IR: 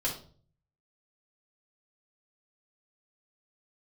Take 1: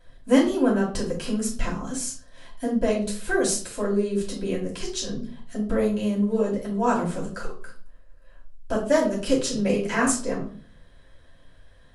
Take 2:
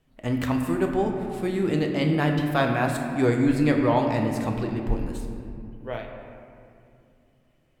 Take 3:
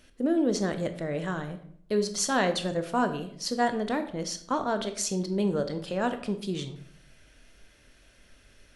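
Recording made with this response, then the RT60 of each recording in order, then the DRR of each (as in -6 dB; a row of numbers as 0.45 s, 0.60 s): 1; 0.45 s, 2.5 s, 0.60 s; -6.0 dB, 2.0 dB, 7.5 dB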